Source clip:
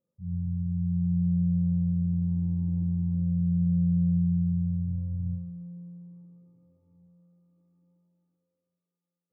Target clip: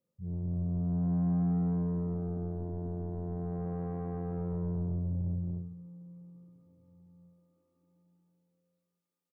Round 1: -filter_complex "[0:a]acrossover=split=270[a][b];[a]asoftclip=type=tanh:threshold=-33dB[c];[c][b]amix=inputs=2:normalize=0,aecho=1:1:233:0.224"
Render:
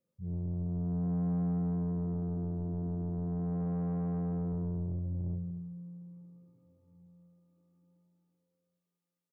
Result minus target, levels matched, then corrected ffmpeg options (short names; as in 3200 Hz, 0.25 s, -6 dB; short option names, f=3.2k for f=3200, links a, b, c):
echo-to-direct -10.5 dB
-filter_complex "[0:a]acrossover=split=270[a][b];[a]asoftclip=type=tanh:threshold=-33dB[c];[c][b]amix=inputs=2:normalize=0,aecho=1:1:233:0.75"